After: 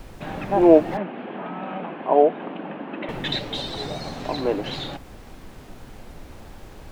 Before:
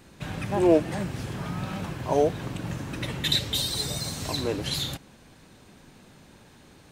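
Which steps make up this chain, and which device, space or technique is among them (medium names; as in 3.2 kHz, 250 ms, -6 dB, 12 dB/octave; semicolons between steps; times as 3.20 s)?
horn gramophone (band-pass 270–3700 Hz; peaking EQ 740 Hz +5.5 dB 0.58 oct; wow and flutter; pink noise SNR 21 dB); 0.97–3.09 s: elliptic band-pass 200–3000 Hz, stop band 40 dB; tilt EQ -2 dB/octave; trim +3.5 dB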